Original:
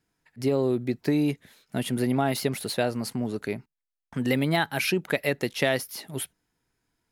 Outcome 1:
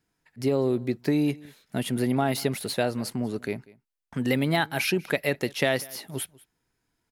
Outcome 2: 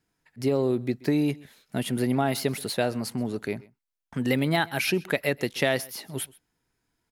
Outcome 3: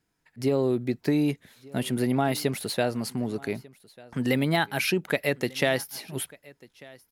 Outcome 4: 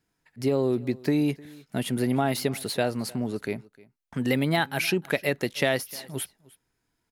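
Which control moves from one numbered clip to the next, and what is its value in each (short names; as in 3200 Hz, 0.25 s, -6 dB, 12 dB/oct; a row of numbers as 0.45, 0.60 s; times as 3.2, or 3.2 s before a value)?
echo, time: 0.193, 0.13, 1.194, 0.306 s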